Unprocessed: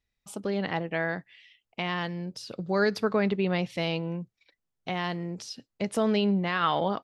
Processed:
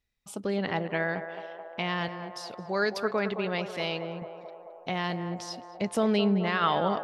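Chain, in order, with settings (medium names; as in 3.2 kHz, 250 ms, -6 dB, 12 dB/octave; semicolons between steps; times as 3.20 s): 2.08–4.22 s: bass shelf 330 Hz -9.5 dB; band-passed feedback delay 216 ms, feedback 80%, band-pass 740 Hz, level -8 dB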